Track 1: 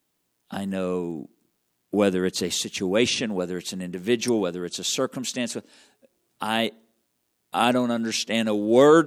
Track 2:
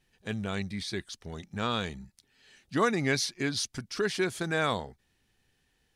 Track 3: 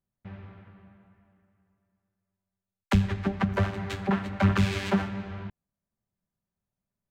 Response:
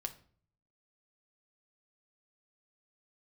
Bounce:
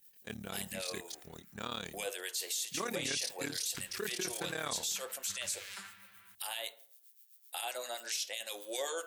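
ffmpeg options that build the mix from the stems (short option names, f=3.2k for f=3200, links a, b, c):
-filter_complex "[0:a]highpass=f=560:w=0.5412,highpass=f=560:w=1.3066,alimiter=limit=-18dB:level=0:latency=1:release=192,acrossover=split=1300[a][b];[a]aeval=exprs='val(0)*(1-0.7/2+0.7/2*cos(2*PI*7.7*n/s))':c=same[c];[b]aeval=exprs='val(0)*(1-0.7/2-0.7/2*cos(2*PI*7.7*n/s))':c=same[d];[c][d]amix=inputs=2:normalize=0,volume=-2.5dB,asplit=2[e][f];[f]volume=-4dB[g];[1:a]lowshelf=f=100:g=-11.5,acontrast=87,tremolo=f=36:d=0.919,volume=-13dB,asplit=2[h][i];[i]volume=-15.5dB[j];[2:a]adelay=850,volume=-13dB,asplit=2[k][l];[l]volume=-23dB[m];[e][k]amix=inputs=2:normalize=0,highpass=f=1.2k:w=0.5412,highpass=f=1.2k:w=1.3066,acompressor=threshold=-40dB:ratio=2.5,volume=0dB[n];[3:a]atrim=start_sample=2205[o];[g][j][m]amix=inputs=3:normalize=0[p];[p][o]afir=irnorm=-1:irlink=0[q];[h][n][q]amix=inputs=3:normalize=0,aemphasis=mode=production:type=50fm,alimiter=level_in=2dB:limit=-24dB:level=0:latency=1:release=14,volume=-2dB"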